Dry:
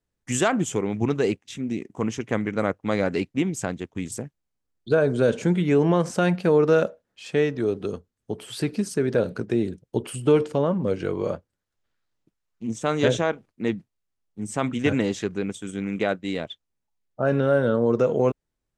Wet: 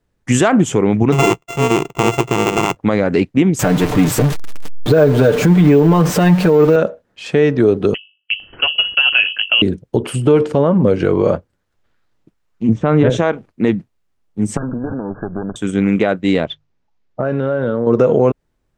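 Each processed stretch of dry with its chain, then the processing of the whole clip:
0:01.12–0:02.77: samples sorted by size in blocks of 64 samples + EQ curve with evenly spaced ripples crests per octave 0.71, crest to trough 13 dB + downward expander −48 dBFS
0:03.59–0:06.76: converter with a step at zero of −28.5 dBFS + comb filter 6.7 ms, depth 68% + bad sample-rate conversion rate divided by 2×, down none, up hold
0:07.94–0:09.62: noise gate −37 dBFS, range −18 dB + mains-hum notches 50/100/150/200/250/300/350/400/450/500 Hz + voice inversion scrambler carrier 3,100 Hz
0:12.69–0:13.10: low-pass filter 2,200 Hz + low-shelf EQ 180 Hz +11 dB
0:14.57–0:15.56: lower of the sound and its delayed copy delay 0.54 ms + downward compressor 16 to 1, threshold −32 dBFS + linear-phase brick-wall low-pass 1,700 Hz
0:16.45–0:17.87: low-pass filter 6,200 Hz 24 dB per octave + mains-hum notches 50/100/150 Hz + downward compressor 5 to 1, threshold −29 dBFS
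whole clip: high-shelf EQ 3,500 Hz −9.5 dB; downward compressor, threshold −20 dBFS; boost into a limiter +16.5 dB; level −2 dB

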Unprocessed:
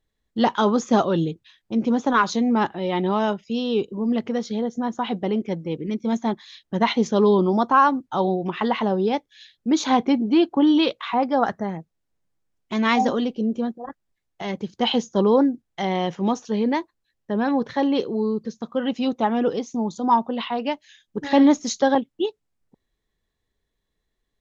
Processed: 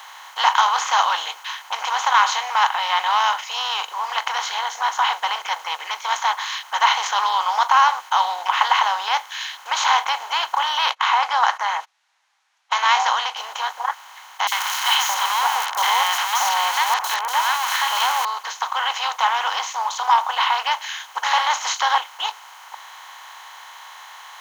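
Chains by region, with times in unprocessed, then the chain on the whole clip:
0:10.91–0:13.37: low-pass filter 5,900 Hz + noise gate −45 dBFS, range −47 dB
0:14.47–0:18.25: converter with a step at zero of −31.5 dBFS + high-shelf EQ 4,700 Hz +11 dB + three-band delay without the direct sound highs, mids, lows 50/620 ms, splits 1,100/4,800 Hz
whole clip: compressor on every frequency bin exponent 0.4; elliptic high-pass filter 830 Hz, stop band 80 dB

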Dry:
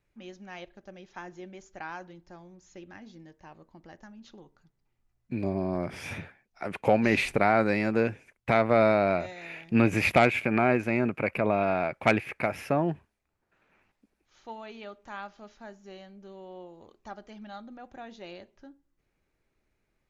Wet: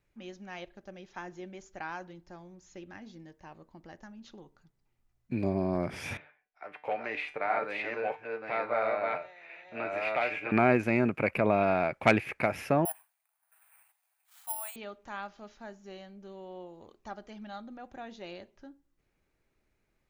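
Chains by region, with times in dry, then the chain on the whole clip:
0:06.17–0:10.52: delay that plays each chunk backwards 664 ms, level −1 dB + three-way crossover with the lows and the highs turned down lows −19 dB, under 450 Hz, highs −21 dB, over 3,600 Hz + tuned comb filter 150 Hz, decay 0.31 s, mix 70%
0:12.85–0:14.76: Butterworth high-pass 660 Hz 96 dB per octave + bad sample-rate conversion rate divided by 4×, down filtered, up zero stuff
whole clip: no processing

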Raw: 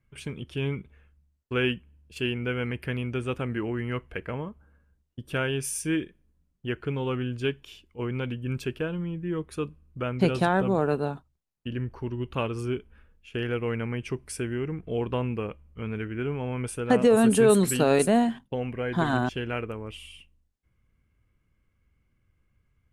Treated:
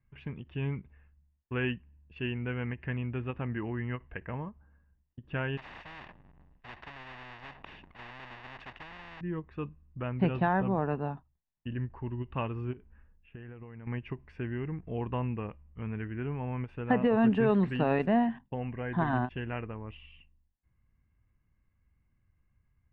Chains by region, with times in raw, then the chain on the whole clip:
0:05.57–0:09.21: each half-wave held at its own peak + every bin compressed towards the loudest bin 10 to 1
0:12.73–0:13.87: downward compressor 16 to 1, threshold −36 dBFS + high-frequency loss of the air 340 metres
whole clip: low-pass filter 2,500 Hz 24 dB per octave; comb filter 1.1 ms, depth 40%; every ending faded ahead of time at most 380 dB per second; level −4.5 dB

